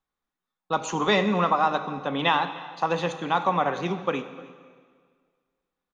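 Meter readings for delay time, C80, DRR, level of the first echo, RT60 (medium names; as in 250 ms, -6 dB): 305 ms, 12.5 dB, 9.5 dB, -22.0 dB, 1.8 s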